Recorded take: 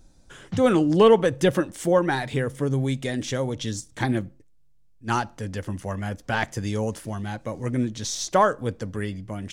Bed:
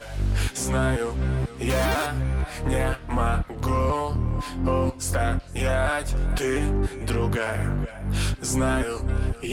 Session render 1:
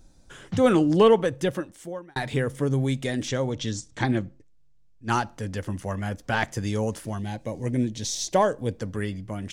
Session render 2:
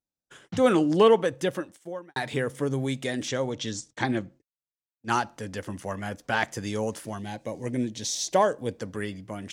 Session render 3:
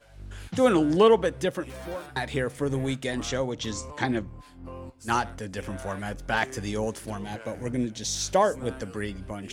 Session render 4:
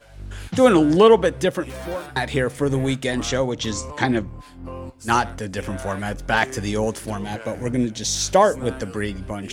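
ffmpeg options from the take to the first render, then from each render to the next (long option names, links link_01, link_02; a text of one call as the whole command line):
ffmpeg -i in.wav -filter_complex "[0:a]asettb=1/sr,asplit=3[link_01][link_02][link_03];[link_01]atrim=end=3.284[link_04];[link_02]atrim=start=3.28:end=5.09,asetpts=PTS-STARTPTS,afade=type=in:duration=0.004:curve=qsin,afade=type=out:start_time=1.806:duration=0.004:curve=qsin,lowpass=frequency=7900:width=0.5412,lowpass=frequency=7900:width=1.3066[link_05];[link_03]atrim=start=5.086[link_06];[link_04][link_05]acrossfade=duration=0.004:curve1=hsin:curve2=qsin[link_07];[link_07][link_06]acrossfade=duration=0.004:curve1=qsin:curve2=hsin,asettb=1/sr,asplit=3[link_08][link_09][link_10];[link_08]atrim=end=7.194[link_11];[link_09]atrim=start=7.19:end=8.79,asetpts=PTS-STARTPTS,afade=type=in:duration=0.004:curve=qsin,afade=type=out:start_time=1.596:duration=0.004:curve=qsin,equalizer=frequency=1300:width=2.9:gain=-13.5[link_12];[link_10]atrim=start=8.786[link_13];[link_11][link_12]acrossfade=duration=0.004:curve1=hsin:curve2=qsin[link_14];[link_14][link_13]acrossfade=duration=0.004:curve1=qsin:curve2=hsin,asplit=2[link_15][link_16];[link_15]atrim=end=2.16,asetpts=PTS-STARTPTS,afade=type=out:start_time=0.85:duration=1.31[link_17];[link_16]atrim=start=2.16,asetpts=PTS-STARTPTS,afade=type=in:duration=0.004:curve=hsin[link_18];[link_17][link_18]concat=n=2:v=0:a=1" out.wav
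ffmpeg -i in.wav -af "agate=range=-33dB:threshold=-44dB:ratio=16:detection=peak,highpass=frequency=240:poles=1" out.wav
ffmpeg -i in.wav -i bed.wav -filter_complex "[1:a]volume=-18dB[link_01];[0:a][link_01]amix=inputs=2:normalize=0" out.wav
ffmpeg -i in.wav -af "volume=6.5dB,alimiter=limit=-3dB:level=0:latency=1" out.wav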